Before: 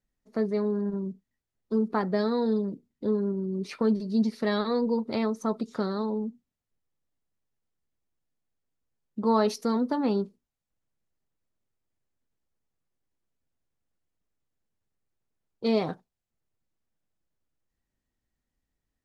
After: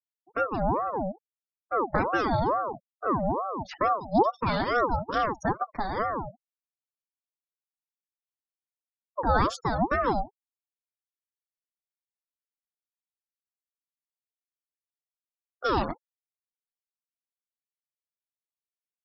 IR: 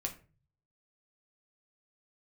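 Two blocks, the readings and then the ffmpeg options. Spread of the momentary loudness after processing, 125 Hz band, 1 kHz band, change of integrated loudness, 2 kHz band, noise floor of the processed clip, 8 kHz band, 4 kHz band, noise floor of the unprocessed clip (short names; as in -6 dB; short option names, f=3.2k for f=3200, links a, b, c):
10 LU, +2.5 dB, +9.0 dB, +0.5 dB, +8.5 dB, under -85 dBFS, n/a, -0.5 dB, under -85 dBFS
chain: -af "flanger=delay=2.5:depth=9.3:regen=-16:speed=0.56:shape=triangular,afftfilt=real='re*gte(hypot(re,im),0.00794)':imag='im*gte(hypot(re,im),0.00794)':win_size=1024:overlap=0.75,aeval=exprs='val(0)*sin(2*PI*670*n/s+670*0.45/2.3*sin(2*PI*2.3*n/s))':c=same,volume=6.5dB"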